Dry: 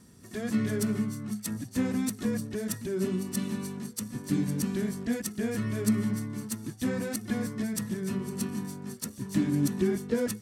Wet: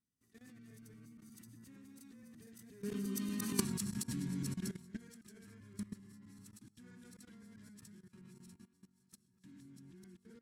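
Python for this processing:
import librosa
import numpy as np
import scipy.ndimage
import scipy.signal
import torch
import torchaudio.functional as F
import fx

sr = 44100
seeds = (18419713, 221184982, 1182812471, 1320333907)

y = fx.reverse_delay(x, sr, ms=124, wet_db=0)
y = fx.doppler_pass(y, sr, speed_mps=18, closest_m=1.0, pass_at_s=3.6)
y = fx.peak_eq(y, sr, hz=590.0, db=-11.0, octaves=1.2)
y = fx.hum_notches(y, sr, base_hz=50, count=3)
y = fx.level_steps(y, sr, step_db=18)
y = y * librosa.db_to_amplitude(15.5)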